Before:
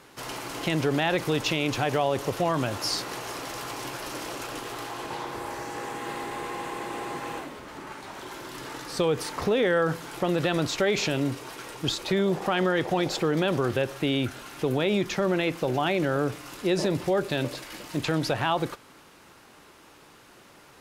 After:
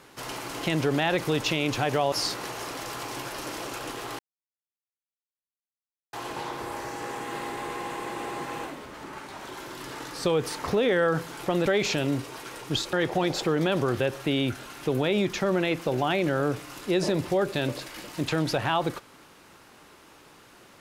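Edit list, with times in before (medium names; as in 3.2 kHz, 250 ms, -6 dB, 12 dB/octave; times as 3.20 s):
2.12–2.80 s: delete
4.87 s: insert silence 1.94 s
10.40–10.79 s: delete
12.06–12.69 s: delete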